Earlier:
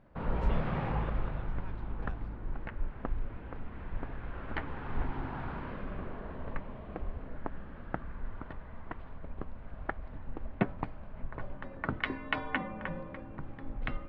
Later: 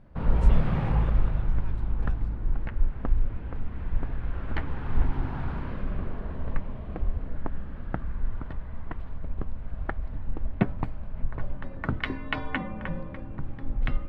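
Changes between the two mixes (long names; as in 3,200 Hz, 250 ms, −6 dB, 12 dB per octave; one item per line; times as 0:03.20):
background: add low-shelf EQ 200 Hz +11.5 dB
master: remove high-frequency loss of the air 160 metres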